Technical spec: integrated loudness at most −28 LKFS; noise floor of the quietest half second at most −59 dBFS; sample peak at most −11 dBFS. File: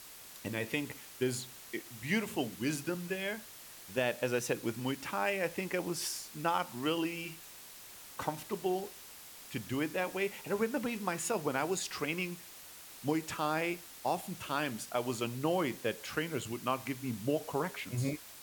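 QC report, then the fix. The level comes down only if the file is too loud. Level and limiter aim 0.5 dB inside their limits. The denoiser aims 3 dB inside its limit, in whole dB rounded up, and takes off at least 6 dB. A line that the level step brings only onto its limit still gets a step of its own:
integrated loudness −35.5 LKFS: in spec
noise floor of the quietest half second −51 dBFS: out of spec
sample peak −17.5 dBFS: in spec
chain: broadband denoise 11 dB, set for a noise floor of −51 dBFS

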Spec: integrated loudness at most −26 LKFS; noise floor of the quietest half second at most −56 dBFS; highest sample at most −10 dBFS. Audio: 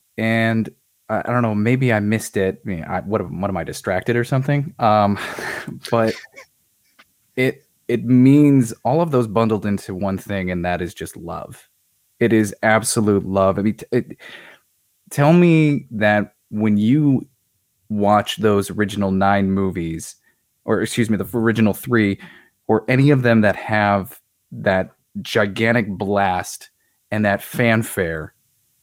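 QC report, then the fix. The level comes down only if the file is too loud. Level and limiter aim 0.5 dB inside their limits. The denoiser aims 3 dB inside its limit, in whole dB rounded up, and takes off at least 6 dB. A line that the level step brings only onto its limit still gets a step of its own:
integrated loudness −18.5 LKFS: out of spec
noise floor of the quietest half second −67 dBFS: in spec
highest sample −2.5 dBFS: out of spec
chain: level −8 dB

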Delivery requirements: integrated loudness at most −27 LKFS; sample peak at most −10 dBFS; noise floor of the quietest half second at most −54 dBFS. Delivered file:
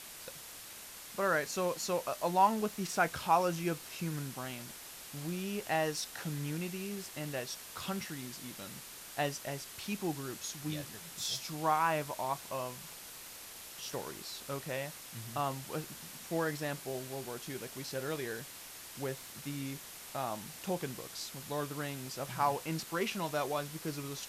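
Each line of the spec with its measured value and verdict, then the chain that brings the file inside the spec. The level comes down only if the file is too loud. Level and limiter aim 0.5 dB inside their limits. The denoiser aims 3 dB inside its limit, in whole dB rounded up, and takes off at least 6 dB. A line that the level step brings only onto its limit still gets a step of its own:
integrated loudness −37.0 LKFS: in spec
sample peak −14.5 dBFS: in spec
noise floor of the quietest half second −49 dBFS: out of spec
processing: broadband denoise 8 dB, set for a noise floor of −49 dBFS

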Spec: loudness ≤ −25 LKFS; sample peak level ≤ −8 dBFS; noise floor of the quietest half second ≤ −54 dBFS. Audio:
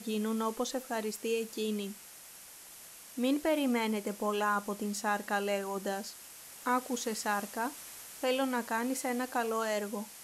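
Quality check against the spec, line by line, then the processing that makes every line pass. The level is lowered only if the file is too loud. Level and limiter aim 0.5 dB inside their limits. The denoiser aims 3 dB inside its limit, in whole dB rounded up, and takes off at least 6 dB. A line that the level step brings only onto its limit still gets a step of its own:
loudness −33.5 LKFS: in spec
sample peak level −18.0 dBFS: in spec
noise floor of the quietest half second −51 dBFS: out of spec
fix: broadband denoise 6 dB, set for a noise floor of −51 dBFS

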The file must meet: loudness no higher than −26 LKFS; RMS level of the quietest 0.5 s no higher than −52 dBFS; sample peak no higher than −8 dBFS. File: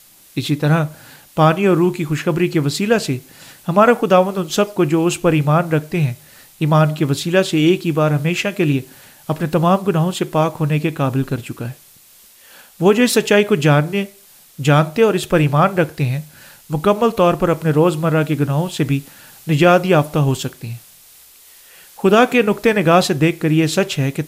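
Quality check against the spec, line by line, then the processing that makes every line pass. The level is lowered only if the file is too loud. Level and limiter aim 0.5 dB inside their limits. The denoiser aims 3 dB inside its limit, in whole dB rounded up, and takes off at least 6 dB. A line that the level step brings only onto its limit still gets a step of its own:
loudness −16.5 LKFS: out of spec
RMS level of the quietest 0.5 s −47 dBFS: out of spec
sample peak −1.5 dBFS: out of spec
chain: level −10 dB

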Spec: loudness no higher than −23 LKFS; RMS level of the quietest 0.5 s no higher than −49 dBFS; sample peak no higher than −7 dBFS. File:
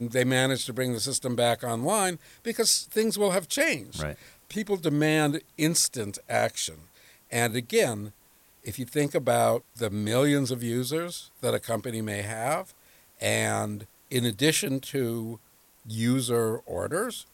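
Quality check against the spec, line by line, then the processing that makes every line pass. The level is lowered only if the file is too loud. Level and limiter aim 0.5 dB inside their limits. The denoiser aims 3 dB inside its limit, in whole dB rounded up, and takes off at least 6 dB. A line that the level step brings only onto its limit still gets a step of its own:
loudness −27.0 LKFS: in spec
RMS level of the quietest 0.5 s −60 dBFS: in spec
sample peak −8.5 dBFS: in spec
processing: no processing needed

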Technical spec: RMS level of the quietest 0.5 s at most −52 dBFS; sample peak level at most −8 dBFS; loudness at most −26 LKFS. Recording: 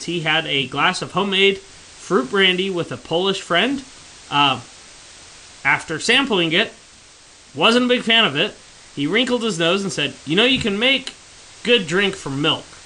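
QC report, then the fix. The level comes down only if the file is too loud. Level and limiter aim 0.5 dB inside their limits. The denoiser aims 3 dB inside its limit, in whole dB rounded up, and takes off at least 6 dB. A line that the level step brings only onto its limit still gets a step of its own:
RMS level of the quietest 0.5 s −46 dBFS: out of spec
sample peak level −3.5 dBFS: out of spec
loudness −18.0 LKFS: out of spec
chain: level −8.5 dB

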